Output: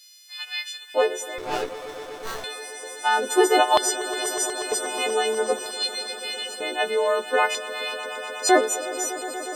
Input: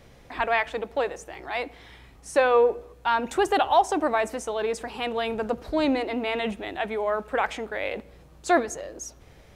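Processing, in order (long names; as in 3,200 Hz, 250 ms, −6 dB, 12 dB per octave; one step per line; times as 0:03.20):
every partial snapped to a pitch grid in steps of 3 semitones
auto-filter high-pass square 0.53 Hz 380–4,200 Hz
on a send: echo that builds up and dies away 121 ms, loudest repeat 5, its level −16.5 dB
0:01.38–0:02.44: on the sum: windowed peak hold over 17 samples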